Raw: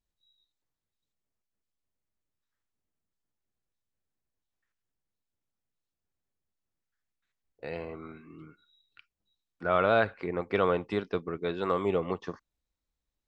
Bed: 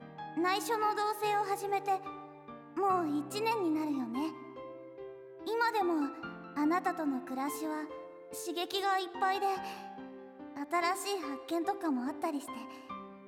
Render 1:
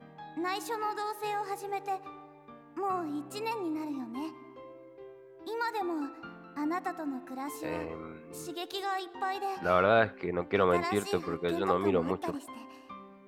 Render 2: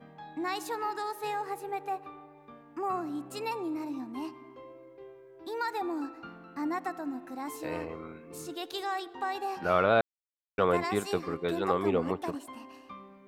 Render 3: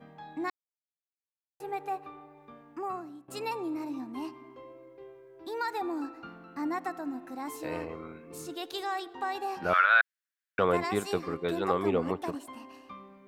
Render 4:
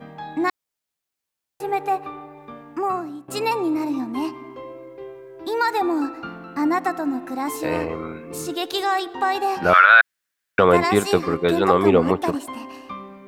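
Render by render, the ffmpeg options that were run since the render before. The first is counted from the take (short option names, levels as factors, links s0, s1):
-filter_complex "[1:a]volume=0.75[s0];[0:a][s0]amix=inputs=2:normalize=0"
-filter_complex "[0:a]asettb=1/sr,asplit=3[s0][s1][s2];[s0]atrim=end=1.424[s3];[s1]atrim=start=1.42:end=2.37,asetpts=PTS-STARTPTS,afade=t=in:d=0.004:c=qsin,afade=t=out:st=0.946:d=0.004:c=qsin,equalizer=f=5800:w=1.2:g=-8[s4];[s2]atrim=start=2.366[s5];[s3][s4]acrossfade=d=0.004:c1=hsin:c2=qsin[s6];[s6][s5]acrossfade=d=0.004:c1=qsin:c2=hsin,asplit=3[s7][s8][s9];[s7]atrim=end=10.01,asetpts=PTS-STARTPTS,afade=t=out:st=10.006:d=0.004:c=hsin[s10];[s8]atrim=start=10.01:end=10.58,asetpts=PTS-STARTPTS,volume=0[s11];[s9]atrim=start=10.58,asetpts=PTS-STARTPTS,afade=t=in:d=0.004:c=hsin[s12];[s10][s11][s12]concat=n=3:v=0:a=1"
-filter_complex "[0:a]asettb=1/sr,asplit=3[s0][s1][s2];[s0]atrim=end=9.734[s3];[s1]atrim=start=9.73:end=10.59,asetpts=PTS-STARTPTS,afade=t=in:d=0.004:c=qsin,afade=t=out:st=0.856:d=0.004:c=qsin,highpass=f=1600:t=q:w=4.8[s4];[s2]atrim=start=10.586[s5];[s3][s4]acrossfade=d=0.004:c1=hsin:c2=qsin[s6];[s6][s5]acrossfade=d=0.004:c1=qsin:c2=hsin,asplit=4[s7][s8][s9][s10];[s7]atrim=end=0.5,asetpts=PTS-STARTPTS,afade=t=out:st=0.496:d=0.004:c=hsin[s11];[s8]atrim=start=0.5:end=1.6,asetpts=PTS-STARTPTS,volume=0[s12];[s9]atrim=start=1.6:end=3.28,asetpts=PTS-STARTPTS,afade=t=in:d=0.004:c=hsin,afade=t=out:st=1.07:d=0.61:silence=0.0841395[s13];[s10]atrim=start=3.28,asetpts=PTS-STARTPTS,afade=t=in:d=0.004:c=hsin:silence=0.0841395[s14];[s11][s12][s13][s14]concat=n=4:v=0:a=1"
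-af "volume=3.98,alimiter=limit=0.794:level=0:latency=1"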